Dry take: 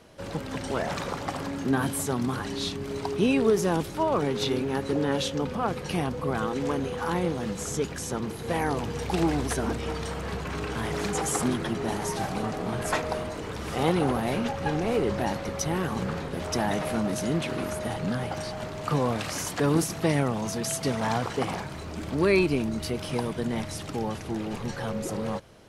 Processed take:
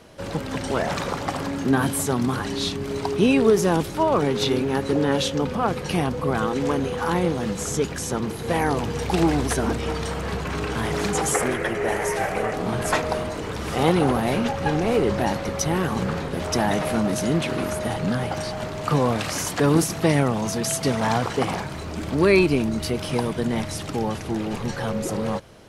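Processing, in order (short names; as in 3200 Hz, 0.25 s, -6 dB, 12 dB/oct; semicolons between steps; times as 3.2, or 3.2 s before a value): 11.34–12.54 graphic EQ 125/250/500/1000/2000/4000 Hz -5/-9/+8/-4/+10/-9 dB; gain +5 dB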